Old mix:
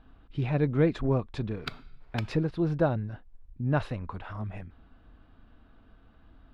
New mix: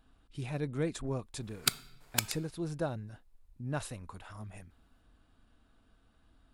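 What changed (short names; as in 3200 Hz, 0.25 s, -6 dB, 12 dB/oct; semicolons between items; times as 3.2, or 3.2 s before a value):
speech -10.0 dB; master: remove air absorption 320 m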